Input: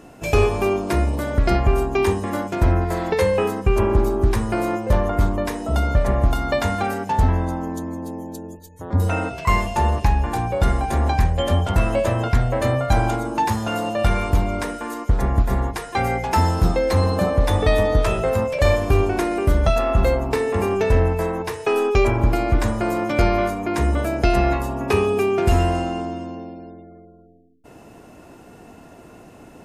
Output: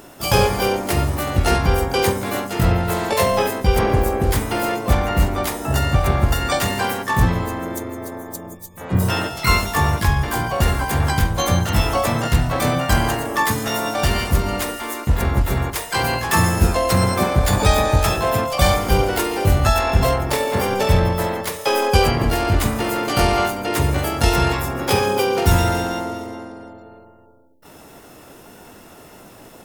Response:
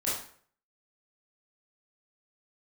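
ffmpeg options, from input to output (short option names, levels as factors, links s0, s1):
-filter_complex "[0:a]asplit=4[s0][s1][s2][s3];[s1]asetrate=55563,aresample=44100,atempo=0.793701,volume=0.501[s4];[s2]asetrate=58866,aresample=44100,atempo=0.749154,volume=0.447[s5];[s3]asetrate=88200,aresample=44100,atempo=0.5,volume=0.708[s6];[s0][s4][s5][s6]amix=inputs=4:normalize=0,crystalizer=i=2:c=0,volume=0.75"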